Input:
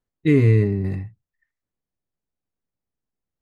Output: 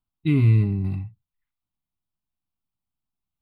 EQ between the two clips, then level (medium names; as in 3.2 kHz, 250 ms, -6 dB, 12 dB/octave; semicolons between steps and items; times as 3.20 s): static phaser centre 1.8 kHz, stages 6; 0.0 dB